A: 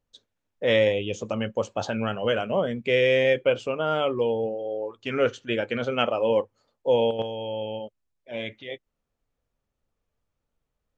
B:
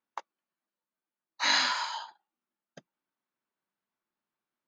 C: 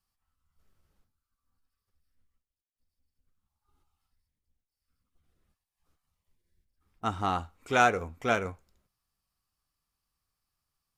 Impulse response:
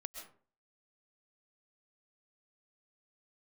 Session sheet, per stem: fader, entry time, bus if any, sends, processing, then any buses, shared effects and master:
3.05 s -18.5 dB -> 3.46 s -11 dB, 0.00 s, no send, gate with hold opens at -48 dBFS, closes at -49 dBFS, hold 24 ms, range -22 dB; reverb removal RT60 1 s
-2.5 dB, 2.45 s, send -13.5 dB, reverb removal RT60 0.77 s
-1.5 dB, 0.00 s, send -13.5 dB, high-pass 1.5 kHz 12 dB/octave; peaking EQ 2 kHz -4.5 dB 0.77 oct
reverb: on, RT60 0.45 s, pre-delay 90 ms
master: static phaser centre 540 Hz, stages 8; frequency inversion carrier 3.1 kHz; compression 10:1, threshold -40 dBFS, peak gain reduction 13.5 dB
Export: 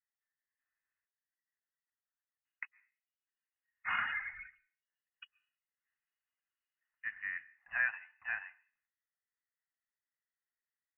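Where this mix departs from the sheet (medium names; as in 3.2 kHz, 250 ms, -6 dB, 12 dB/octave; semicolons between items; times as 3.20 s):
stem A: muted; master: missing compression 10:1, threshold -40 dBFS, peak gain reduction 13.5 dB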